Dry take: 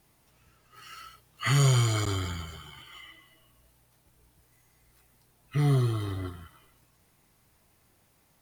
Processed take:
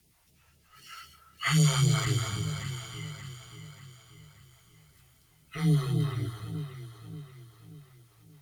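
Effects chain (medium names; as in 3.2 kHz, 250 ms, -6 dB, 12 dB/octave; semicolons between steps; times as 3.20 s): phase shifter stages 2, 3.9 Hz, lowest notch 180–1300 Hz; frequency shift +16 Hz; echo whose repeats swap between lows and highs 291 ms, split 1.2 kHz, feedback 68%, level -6 dB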